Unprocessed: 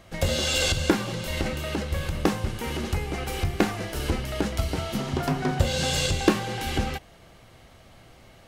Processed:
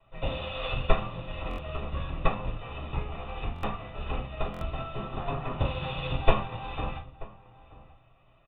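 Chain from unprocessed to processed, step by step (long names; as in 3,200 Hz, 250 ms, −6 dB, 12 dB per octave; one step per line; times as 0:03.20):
lower of the sound and its delayed copy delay 1.6 ms
Chebyshev low-pass with heavy ripple 3,700 Hz, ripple 9 dB
slap from a distant wall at 160 metres, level −13 dB
convolution reverb RT60 0.40 s, pre-delay 3 ms, DRR −3 dB
buffer that repeats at 0:01.49/0:03.54/0:04.52, samples 1,024, times 3
expander for the loud parts 1.5 to 1, over −32 dBFS
level −3.5 dB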